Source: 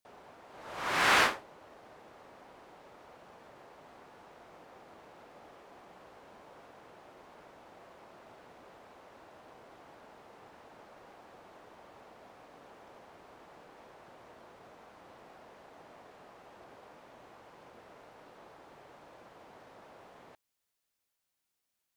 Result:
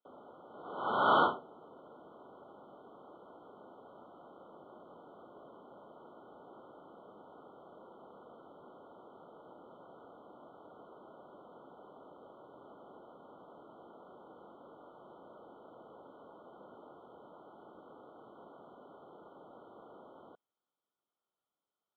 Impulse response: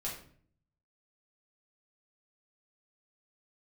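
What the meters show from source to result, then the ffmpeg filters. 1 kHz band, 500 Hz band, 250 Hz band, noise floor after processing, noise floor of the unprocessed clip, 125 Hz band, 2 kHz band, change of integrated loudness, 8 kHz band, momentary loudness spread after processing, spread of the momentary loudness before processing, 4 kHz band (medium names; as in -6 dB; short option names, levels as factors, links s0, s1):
+1.0 dB, +2.5 dB, +2.0 dB, under -85 dBFS, -84 dBFS, -2.0 dB, -9.5 dB, -2.5 dB, under -30 dB, 19 LU, 21 LU, -9.5 dB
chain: -af "highpass=f=360:t=q:w=0.5412,highpass=f=360:t=q:w=1.307,lowpass=f=3100:t=q:w=0.5176,lowpass=f=3100:t=q:w=0.7071,lowpass=f=3100:t=q:w=1.932,afreqshift=-160,afftfilt=real='re*eq(mod(floor(b*sr/1024/1500),2),0)':imag='im*eq(mod(floor(b*sr/1024/1500),2),0)':win_size=1024:overlap=0.75,volume=1.12"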